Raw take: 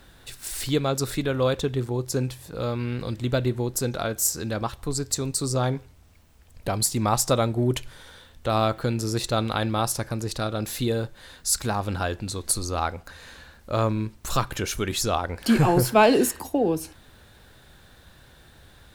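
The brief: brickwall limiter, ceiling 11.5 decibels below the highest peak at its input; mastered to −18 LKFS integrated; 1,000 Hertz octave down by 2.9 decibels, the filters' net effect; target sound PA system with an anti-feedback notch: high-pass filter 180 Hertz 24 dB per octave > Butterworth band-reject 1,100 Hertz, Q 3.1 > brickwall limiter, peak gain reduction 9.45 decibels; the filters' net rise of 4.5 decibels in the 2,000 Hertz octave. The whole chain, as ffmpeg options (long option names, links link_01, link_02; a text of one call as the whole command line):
ffmpeg -i in.wav -af "equalizer=frequency=1000:width_type=o:gain=-4,equalizer=frequency=2000:width_type=o:gain=8,alimiter=limit=-17dB:level=0:latency=1,highpass=frequency=180:width=0.5412,highpass=frequency=180:width=1.3066,asuperstop=centerf=1100:order=8:qfactor=3.1,volume=16dB,alimiter=limit=-7.5dB:level=0:latency=1" out.wav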